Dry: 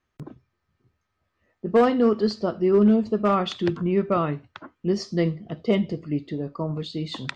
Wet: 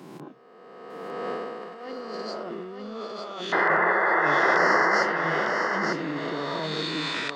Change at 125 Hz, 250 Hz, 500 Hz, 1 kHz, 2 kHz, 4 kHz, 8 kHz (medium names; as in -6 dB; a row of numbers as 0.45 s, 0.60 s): -11.0 dB, -10.5 dB, -5.0 dB, +5.0 dB, +15.5 dB, +3.0 dB, no reading